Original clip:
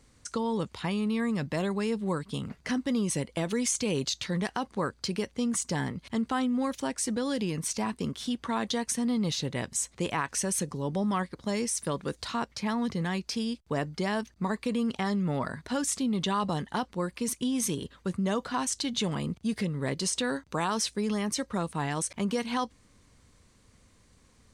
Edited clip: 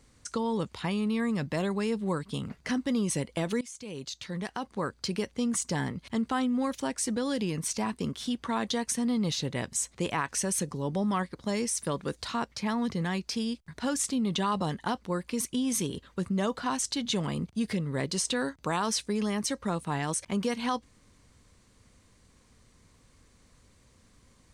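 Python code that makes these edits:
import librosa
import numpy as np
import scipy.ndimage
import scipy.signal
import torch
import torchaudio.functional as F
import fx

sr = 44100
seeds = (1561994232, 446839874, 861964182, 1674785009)

y = fx.edit(x, sr, fx.fade_in_from(start_s=3.61, length_s=1.52, floor_db=-19.5),
    fx.cut(start_s=13.68, length_s=1.88), tone=tone)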